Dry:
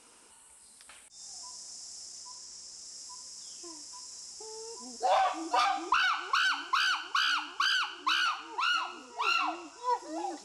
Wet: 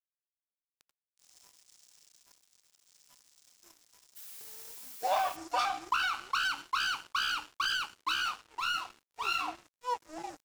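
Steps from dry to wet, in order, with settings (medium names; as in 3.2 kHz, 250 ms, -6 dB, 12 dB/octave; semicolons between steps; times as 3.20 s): crossover distortion -41.5 dBFS; 4.15–5.35 s: added noise blue -46 dBFS; trim -2 dB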